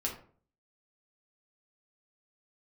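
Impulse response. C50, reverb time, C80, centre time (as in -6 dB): 7.5 dB, 0.45 s, 12.5 dB, 22 ms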